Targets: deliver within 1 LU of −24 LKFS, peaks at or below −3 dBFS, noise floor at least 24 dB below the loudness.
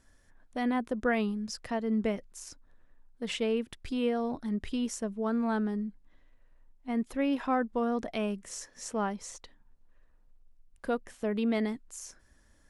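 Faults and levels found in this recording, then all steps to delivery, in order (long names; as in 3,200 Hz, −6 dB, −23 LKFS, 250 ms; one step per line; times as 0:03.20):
integrated loudness −32.5 LKFS; sample peak −17.5 dBFS; target loudness −24.0 LKFS
→ level +8.5 dB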